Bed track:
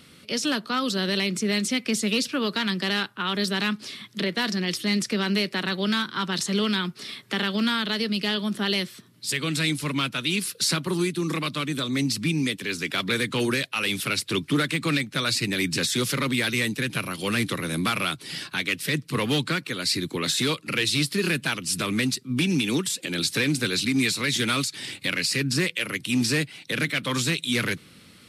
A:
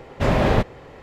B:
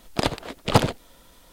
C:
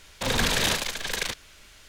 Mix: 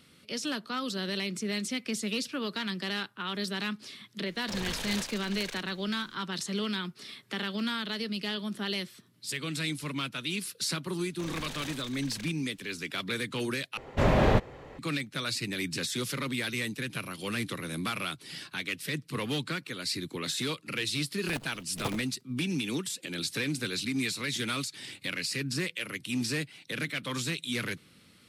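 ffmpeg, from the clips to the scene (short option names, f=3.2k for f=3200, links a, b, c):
-filter_complex "[3:a]asplit=2[a][b];[0:a]volume=-8dB[c];[1:a]bandreject=f=5k:w=25[d];[2:a]acrusher=bits=4:dc=4:mix=0:aa=0.000001[e];[c]asplit=2[f][g];[f]atrim=end=13.774[h];[d]atrim=end=1.02,asetpts=PTS-STARTPTS,volume=-4.5dB[i];[g]atrim=start=14.786[j];[a]atrim=end=1.88,asetpts=PTS-STARTPTS,volume=-12.5dB,afade=t=in:d=0.004:c=hsin,afade=t=out:st=1.876:d=0.004:c=hsin,adelay=4270[k];[b]atrim=end=1.88,asetpts=PTS-STARTPTS,volume=-17dB,afade=t=in:d=0.004:c=hsin,afade=t=out:st=1.876:d=0.004:c=hsin,adelay=484218S[l];[e]atrim=end=1.52,asetpts=PTS-STARTPTS,volume=-17.5dB,afade=t=in:d=0.004:c=hsin,afade=t=out:st=1.516:d=0.004:c=hsin,adelay=21100[m];[h][i]acrossfade=d=0.004:c1=hsin:c2=hsin[n];[n][j]acrossfade=d=0.004:c1=hsin:c2=hsin[o];[o][k][l][m]amix=inputs=4:normalize=0"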